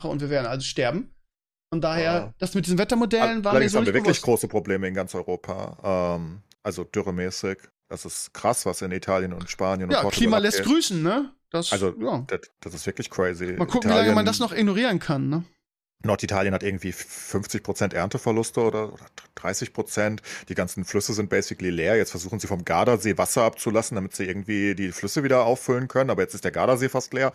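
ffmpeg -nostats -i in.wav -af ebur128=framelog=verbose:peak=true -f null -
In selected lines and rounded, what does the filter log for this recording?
Integrated loudness:
  I:         -24.4 LUFS
  Threshold: -34.6 LUFS
Loudness range:
  LRA:         5.1 LU
  Threshold: -44.6 LUFS
  LRA low:   -27.8 LUFS
  LRA high:  -22.7 LUFS
True peak:
  Peak:       -6.5 dBFS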